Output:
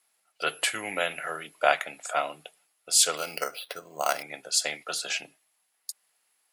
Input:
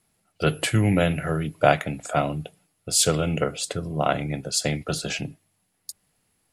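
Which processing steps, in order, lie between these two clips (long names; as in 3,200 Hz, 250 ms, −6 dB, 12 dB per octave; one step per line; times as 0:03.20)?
high-pass filter 810 Hz 12 dB per octave
0:03.17–0:04.23: bad sample-rate conversion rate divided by 6×, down filtered, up hold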